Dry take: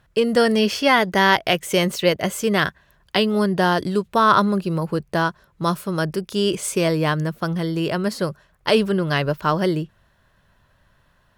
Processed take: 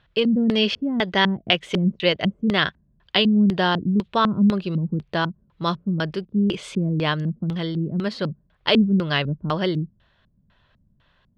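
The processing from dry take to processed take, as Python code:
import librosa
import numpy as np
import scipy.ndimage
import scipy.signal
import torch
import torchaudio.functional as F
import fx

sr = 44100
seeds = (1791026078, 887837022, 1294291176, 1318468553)

y = fx.filter_lfo_lowpass(x, sr, shape='square', hz=2.0, low_hz=220.0, high_hz=3500.0, q=2.5)
y = y * librosa.db_to_amplitude(-3.0)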